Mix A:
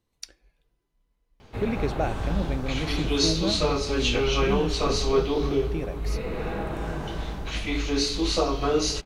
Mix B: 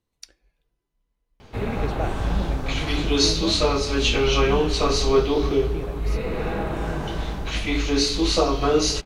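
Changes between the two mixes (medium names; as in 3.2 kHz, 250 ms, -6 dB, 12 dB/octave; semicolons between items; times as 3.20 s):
speech -3.0 dB; background +4.0 dB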